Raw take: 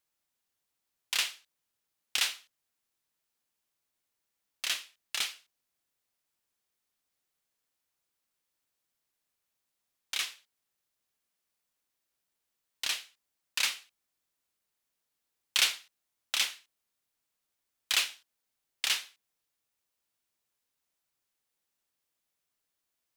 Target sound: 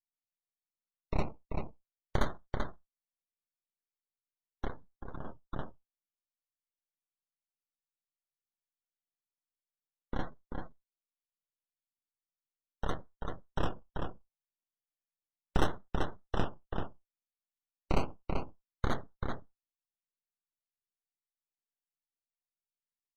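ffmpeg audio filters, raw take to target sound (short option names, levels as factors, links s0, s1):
-filter_complex "[0:a]acrusher=samples=24:mix=1:aa=0.000001:lfo=1:lforange=14.4:lforate=0.36,aecho=1:1:387:0.596,aeval=exprs='abs(val(0))':c=same,bass=f=250:g=4,treble=f=4000:g=-3,asplit=3[s0][s1][s2];[s0]afade=t=out:st=4.67:d=0.02[s3];[s1]acompressor=threshold=0.00794:ratio=2,afade=t=in:st=4.67:d=0.02,afade=t=out:st=5.24:d=0.02[s4];[s2]afade=t=in:st=5.24:d=0.02[s5];[s3][s4][s5]amix=inputs=3:normalize=0,afftdn=nr=29:nf=-45,volume=0.891"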